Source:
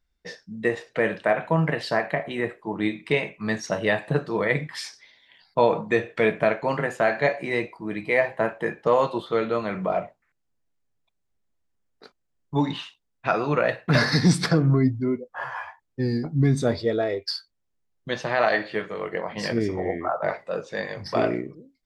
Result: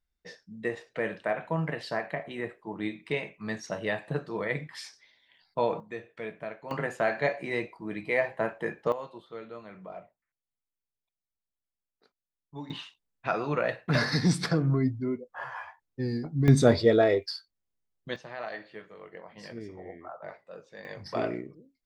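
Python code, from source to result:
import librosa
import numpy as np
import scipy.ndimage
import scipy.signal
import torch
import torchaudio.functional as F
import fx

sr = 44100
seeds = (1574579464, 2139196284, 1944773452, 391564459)

y = fx.gain(x, sr, db=fx.steps((0.0, -8.0), (5.8, -17.0), (6.71, -5.5), (8.92, -18.0), (12.7, -6.0), (16.48, 3.0), (17.26, -7.0), (18.16, -16.5), (20.85, -7.5)))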